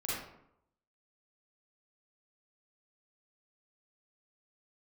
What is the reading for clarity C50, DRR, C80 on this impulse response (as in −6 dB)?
−3.5 dB, −8.0 dB, 2.5 dB